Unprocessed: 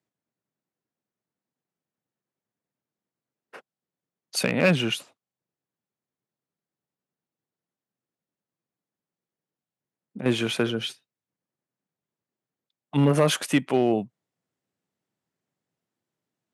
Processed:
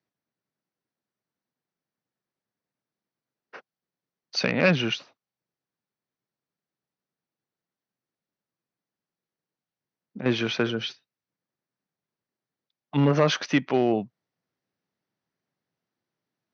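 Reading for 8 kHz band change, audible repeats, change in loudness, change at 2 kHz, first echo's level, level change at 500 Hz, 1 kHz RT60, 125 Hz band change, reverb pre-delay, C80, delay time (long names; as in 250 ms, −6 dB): −7.0 dB, no echo audible, −0.5 dB, +1.0 dB, no echo audible, −0.5 dB, no reverb audible, −1.0 dB, no reverb audible, no reverb audible, no echo audible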